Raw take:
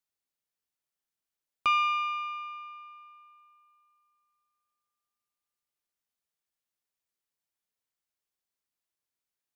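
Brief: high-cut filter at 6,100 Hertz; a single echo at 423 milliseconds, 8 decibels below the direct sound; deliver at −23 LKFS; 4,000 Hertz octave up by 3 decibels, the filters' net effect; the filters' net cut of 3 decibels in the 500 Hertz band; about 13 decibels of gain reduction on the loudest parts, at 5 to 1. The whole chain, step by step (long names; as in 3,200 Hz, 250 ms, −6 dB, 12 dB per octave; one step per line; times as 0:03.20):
low-pass filter 6,100 Hz
parametric band 500 Hz −4 dB
parametric band 4,000 Hz +5.5 dB
downward compressor 5 to 1, threshold −36 dBFS
single-tap delay 423 ms −8 dB
level +16.5 dB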